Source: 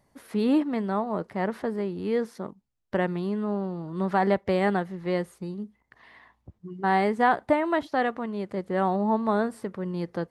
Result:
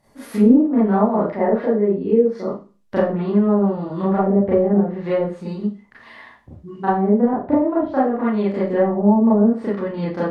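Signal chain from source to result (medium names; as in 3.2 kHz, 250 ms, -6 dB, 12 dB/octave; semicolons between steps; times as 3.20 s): 1.30–2.47 s: resonances exaggerated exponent 1.5; low-pass that closes with the level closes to 370 Hz, closed at -20 dBFS; Schroeder reverb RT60 0.34 s, combs from 27 ms, DRR -9 dB; trim +1.5 dB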